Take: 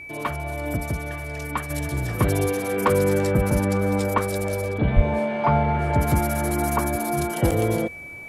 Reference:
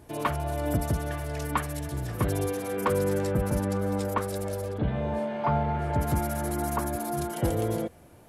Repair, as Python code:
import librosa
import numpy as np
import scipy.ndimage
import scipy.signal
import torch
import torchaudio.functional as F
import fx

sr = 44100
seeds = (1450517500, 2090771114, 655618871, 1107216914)

y = fx.notch(x, sr, hz=2300.0, q=30.0)
y = fx.highpass(y, sr, hz=140.0, slope=24, at=(4.95, 5.07), fade=0.02)
y = fx.fix_interpolate(y, sr, at_s=(7.51,), length_ms=6.4)
y = fx.gain(y, sr, db=fx.steps((0.0, 0.0), (1.7, -6.0)))